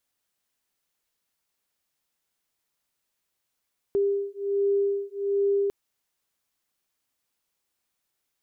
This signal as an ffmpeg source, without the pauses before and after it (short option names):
-f lavfi -i "aevalsrc='0.0531*(sin(2*PI*399*t)+sin(2*PI*400.3*t))':d=1.75:s=44100"